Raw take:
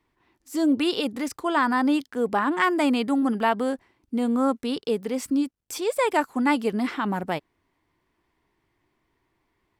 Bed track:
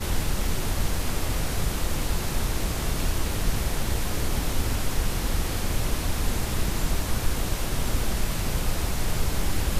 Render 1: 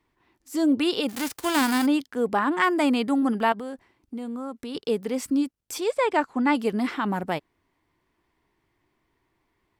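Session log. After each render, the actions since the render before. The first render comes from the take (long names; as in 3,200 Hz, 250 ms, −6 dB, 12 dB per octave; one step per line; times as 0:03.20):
0:01.08–0:01.85: spectral envelope flattened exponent 0.3
0:03.52–0:04.75: downward compressor 3 to 1, threshold −33 dBFS
0:05.91–0:06.55: high-frequency loss of the air 82 metres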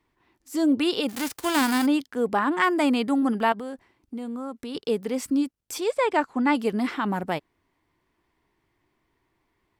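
no processing that can be heard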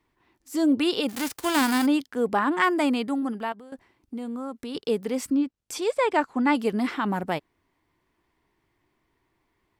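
0:02.66–0:03.72: fade out, to −14 dB
0:05.26–0:05.82: treble cut that deepens with the level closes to 2,700 Hz, closed at −19 dBFS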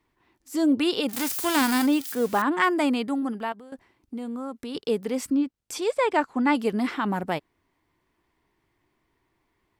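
0:01.13–0:02.42: spike at every zero crossing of −27 dBFS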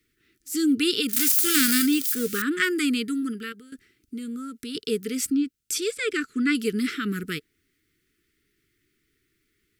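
Chebyshev band-stop filter 450–1,300 Hz, order 4
high-shelf EQ 4,000 Hz +12 dB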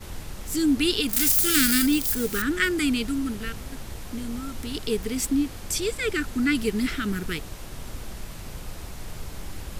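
mix in bed track −11 dB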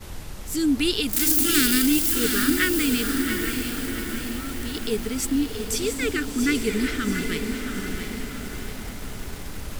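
feedback delay with all-pass diffusion 738 ms, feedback 50%, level −7 dB
feedback echo at a low word length 679 ms, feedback 55%, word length 6 bits, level −7.5 dB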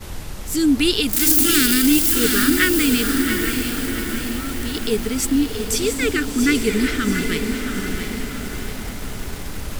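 level +5 dB
brickwall limiter −3 dBFS, peak gain reduction 3 dB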